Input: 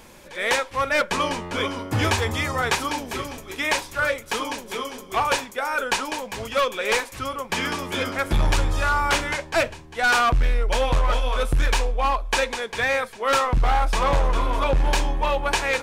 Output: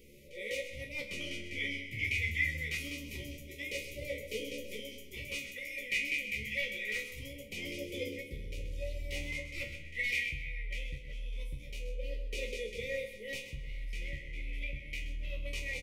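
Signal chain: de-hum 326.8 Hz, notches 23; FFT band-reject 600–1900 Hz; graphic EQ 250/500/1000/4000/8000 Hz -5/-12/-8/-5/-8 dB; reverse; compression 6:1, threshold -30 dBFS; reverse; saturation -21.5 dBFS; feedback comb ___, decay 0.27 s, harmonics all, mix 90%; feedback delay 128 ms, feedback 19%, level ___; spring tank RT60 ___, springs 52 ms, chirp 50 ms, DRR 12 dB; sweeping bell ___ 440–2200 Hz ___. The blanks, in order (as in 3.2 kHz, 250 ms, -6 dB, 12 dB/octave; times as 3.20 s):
71 Hz, -10.5 dB, 2.2 s, 0.24 Hz, +16 dB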